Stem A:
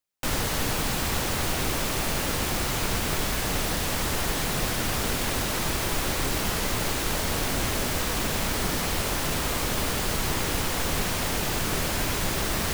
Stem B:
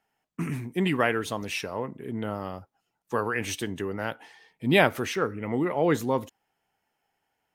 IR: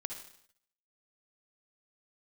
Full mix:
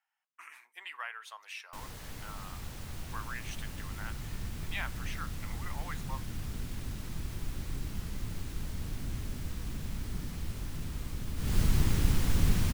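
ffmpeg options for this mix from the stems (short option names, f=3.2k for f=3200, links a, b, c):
-filter_complex "[0:a]asubboost=boost=6.5:cutoff=220,adelay=1500,volume=-10dB,afade=t=in:st=11.36:d=0.22:silence=0.298538[a];[1:a]highpass=f=1k:w=0.5412,highpass=f=1k:w=1.3066,highshelf=f=3.8k:g=-7.5,acompressor=threshold=-42dB:ratio=1.5,volume=-5dB[b];[a][b]amix=inputs=2:normalize=0"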